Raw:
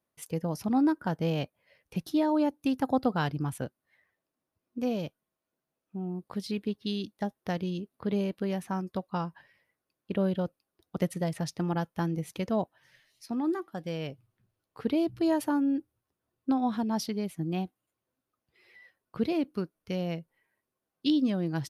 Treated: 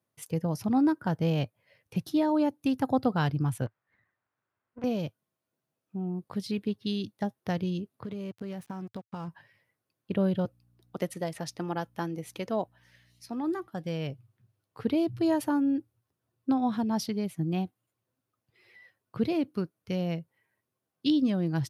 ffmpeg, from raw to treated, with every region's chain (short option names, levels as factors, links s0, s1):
-filter_complex "[0:a]asettb=1/sr,asplit=3[s0][s1][s2];[s0]atrim=end=3.664[s3];[s1]atrim=start=3.66:end=4.84,asetpts=PTS-STARTPTS,afade=t=in:d=0.004:c=qsin,afade=t=out:st=1.176:d=0.004:c=qsin,aemphasis=mode=production:type=riaa,aeval=exprs='max(val(0),0)':c=same,lowpass=f=1500:t=q:w=1.6[s4];[s2]atrim=start=4.836[s5];[s3][s4]acrossfade=d=0.004:c1=hsin:c2=qsin[s6];[s6][s5]acrossfade=d=0.004:c1=qsin:c2=hsin,asettb=1/sr,asplit=3[s7][s8][s9];[s7]atrim=end=8.044[s10];[s8]atrim=start=8.04:end=9.28,asetpts=PTS-STARTPTS,afade=t=in:d=0.004:c=qsin,afade=t=out:st=1.236:d=0.004:c=qsin,aeval=exprs='sgn(val(0))*max(abs(val(0))-0.00355,0)':c=same,acompressor=threshold=0.02:ratio=12:attack=3.2:release=140:knee=1:detection=peak[s11];[s9]atrim=start=9.276[s12];[s10][s11]acrossfade=d=0.004:c1=hsin:c2=qsin[s13];[s13][s12]acrossfade=d=0.004:c1=qsin:c2=hsin,asettb=1/sr,asplit=3[s14][s15][s16];[s14]atrim=end=10.454[s17];[s15]atrim=start=10.45:end=13.68,asetpts=PTS-STARTPTS,afade=t=in:d=0.004:c=qsin,afade=t=out:st=3.226:d=0.004:c=qsin,highpass=280,aeval=exprs='val(0)+0.000447*(sin(2*PI*60*n/s)+sin(2*PI*2*60*n/s)/2+sin(2*PI*3*60*n/s)/3+sin(2*PI*4*60*n/s)/4+sin(2*PI*5*60*n/s)/5)':c=same[s18];[s16]atrim=start=13.676[s19];[s17][s18]acrossfade=d=0.004:c1=hsin:c2=qsin[s20];[s20][s19]acrossfade=d=0.004:c1=qsin:c2=hsin,highpass=84,equalizer=f=110:w=1.9:g=11"